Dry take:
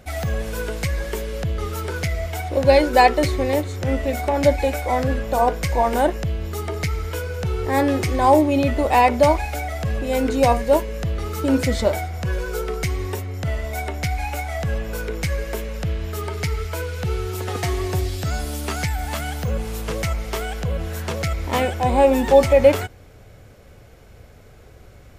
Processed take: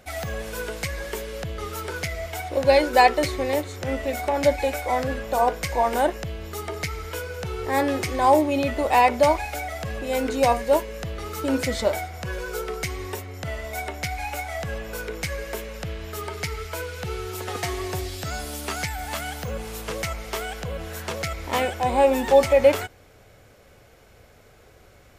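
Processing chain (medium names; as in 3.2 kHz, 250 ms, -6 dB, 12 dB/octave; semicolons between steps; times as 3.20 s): bass shelf 280 Hz -9 dB; trim -1 dB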